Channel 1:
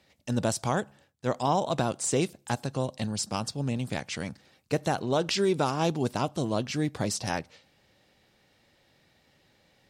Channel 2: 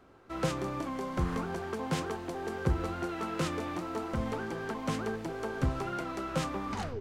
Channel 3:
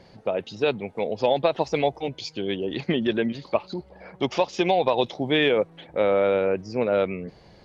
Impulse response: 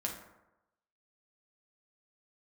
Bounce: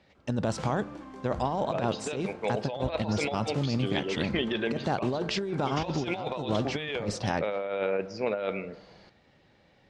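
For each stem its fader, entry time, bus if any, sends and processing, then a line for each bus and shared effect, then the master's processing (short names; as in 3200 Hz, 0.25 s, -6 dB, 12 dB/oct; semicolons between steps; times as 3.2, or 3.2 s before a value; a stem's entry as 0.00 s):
+1.0 dB, 0.00 s, send -18.5 dB, LPF 2200 Hz 6 dB/oct; limiter -21 dBFS, peak gain reduction 6 dB
-7.0 dB, 0.15 s, send -8.5 dB, auto duck -12 dB, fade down 0.80 s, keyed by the first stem
-4.0 dB, 1.45 s, send -10.5 dB, low shelf 420 Hz -9.5 dB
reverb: on, RT60 0.95 s, pre-delay 5 ms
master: negative-ratio compressor -28 dBFS, ratio -0.5; LPF 7300 Hz 12 dB/oct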